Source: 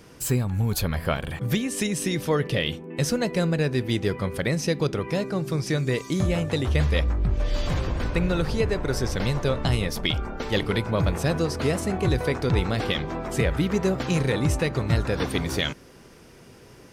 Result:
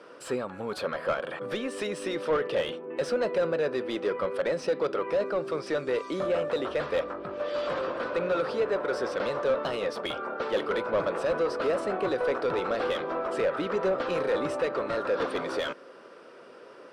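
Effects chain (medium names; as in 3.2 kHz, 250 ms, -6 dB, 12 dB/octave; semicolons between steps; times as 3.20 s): cabinet simulation 310–9600 Hz, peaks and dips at 550 Hz +7 dB, 800 Hz -5 dB, 1.3 kHz +6 dB, 2.1 kHz -5 dB, 6.6 kHz -10 dB; overdrive pedal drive 22 dB, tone 1 kHz, clips at -6.5 dBFS; trim -8.5 dB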